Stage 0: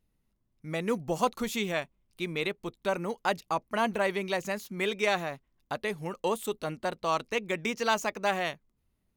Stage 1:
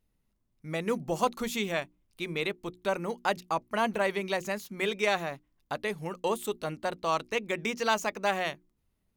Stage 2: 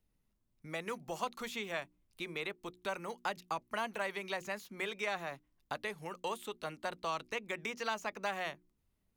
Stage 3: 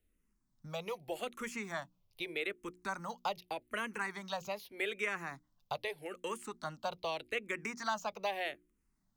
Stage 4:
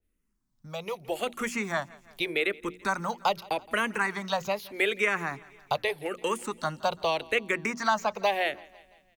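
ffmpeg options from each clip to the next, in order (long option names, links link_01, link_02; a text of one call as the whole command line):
ffmpeg -i in.wav -af "bandreject=frequency=60:width_type=h:width=6,bandreject=frequency=120:width_type=h:width=6,bandreject=frequency=180:width_type=h:width=6,bandreject=frequency=240:width_type=h:width=6,bandreject=frequency=300:width_type=h:width=6,bandreject=frequency=360:width_type=h:width=6" out.wav
ffmpeg -i in.wav -filter_complex "[0:a]acrossover=split=310|740|1900|4300[link_01][link_02][link_03][link_04][link_05];[link_01]acompressor=threshold=-49dB:ratio=4[link_06];[link_02]acompressor=threshold=-43dB:ratio=4[link_07];[link_03]acompressor=threshold=-34dB:ratio=4[link_08];[link_04]acompressor=threshold=-41dB:ratio=4[link_09];[link_05]acompressor=threshold=-51dB:ratio=4[link_10];[link_06][link_07][link_08][link_09][link_10]amix=inputs=5:normalize=0,volume=-3dB" out.wav
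ffmpeg -i in.wav -filter_complex "[0:a]asplit=2[link_01][link_02];[link_02]afreqshift=-0.82[link_03];[link_01][link_03]amix=inputs=2:normalize=1,volume=3dB" out.wav
ffmpeg -i in.wav -af "aecho=1:1:168|336|504|672:0.0708|0.0418|0.0246|0.0145,dynaudnorm=framelen=220:gausssize=9:maxgain=10.5dB,adynamicequalizer=threshold=0.0126:dfrequency=2600:dqfactor=0.7:tfrequency=2600:tqfactor=0.7:attack=5:release=100:ratio=0.375:range=2.5:mode=cutabove:tftype=highshelf" out.wav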